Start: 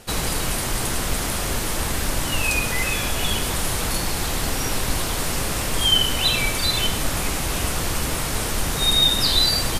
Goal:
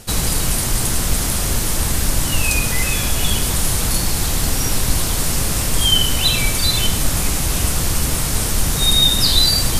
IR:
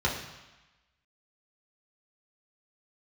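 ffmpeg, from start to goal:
-af "bass=f=250:g=7,treble=f=4k:g=7,areverse,acompressor=mode=upward:threshold=-17dB:ratio=2.5,areverse"

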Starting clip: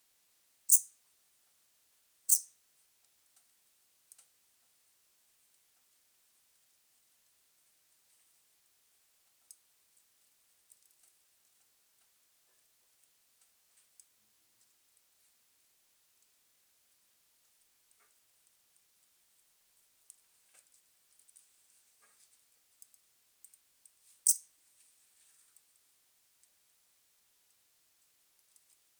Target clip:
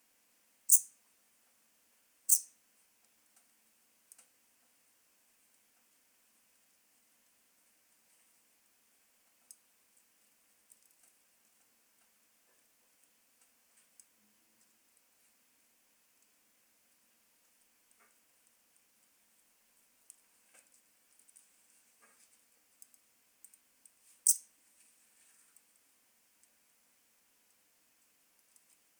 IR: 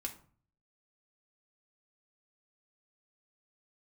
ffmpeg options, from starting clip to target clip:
-filter_complex "[0:a]asplit=2[a][b];[b]highpass=f=160:w=0.5412,highpass=f=160:w=1.3066,equalizer=f=200:t=q:w=4:g=5,equalizer=f=400:t=q:w=4:g=-6,equalizer=f=770:t=q:w=4:g=-5,equalizer=f=1.3k:t=q:w=4:g=-8,equalizer=f=2k:t=q:w=4:g=-4,lowpass=f=3.6k:w=0.5412,lowpass=f=3.6k:w=1.3066[c];[1:a]atrim=start_sample=2205,lowshelf=f=140:g=9.5[d];[c][d]afir=irnorm=-1:irlink=0,volume=3dB[e];[a][e]amix=inputs=2:normalize=0"

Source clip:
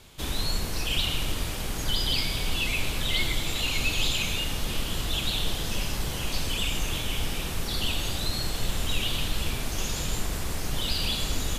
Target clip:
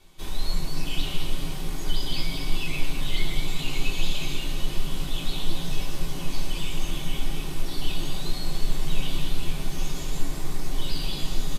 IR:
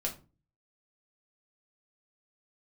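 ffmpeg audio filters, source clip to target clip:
-filter_complex "[0:a]bandreject=f=7.1k:w=25,asplit=6[a][b][c][d][e][f];[b]adelay=215,afreqshift=130,volume=-7.5dB[g];[c]adelay=430,afreqshift=260,volume=-15dB[h];[d]adelay=645,afreqshift=390,volume=-22.6dB[i];[e]adelay=860,afreqshift=520,volume=-30.1dB[j];[f]adelay=1075,afreqshift=650,volume=-37.6dB[k];[a][g][h][i][j][k]amix=inputs=6:normalize=0[l];[1:a]atrim=start_sample=2205,atrim=end_sample=3087,asetrate=70560,aresample=44100[m];[l][m]afir=irnorm=-1:irlink=0,volume=-4dB"

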